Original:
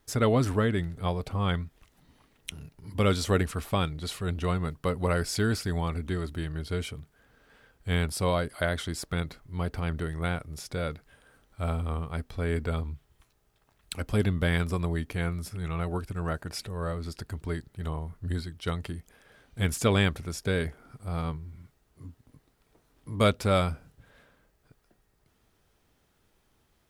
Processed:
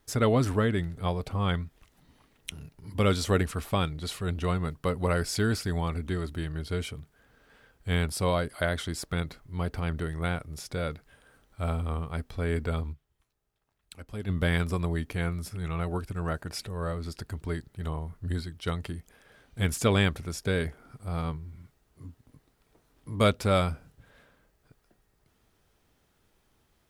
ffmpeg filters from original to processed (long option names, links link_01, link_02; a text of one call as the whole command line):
ffmpeg -i in.wav -filter_complex "[0:a]asplit=3[link_01][link_02][link_03];[link_01]atrim=end=13.07,asetpts=PTS-STARTPTS,afade=type=out:start_time=12.92:duration=0.15:curve=exp:silence=0.266073[link_04];[link_02]atrim=start=13.07:end=14.15,asetpts=PTS-STARTPTS,volume=-11.5dB[link_05];[link_03]atrim=start=14.15,asetpts=PTS-STARTPTS,afade=type=in:duration=0.15:curve=exp:silence=0.266073[link_06];[link_04][link_05][link_06]concat=n=3:v=0:a=1" out.wav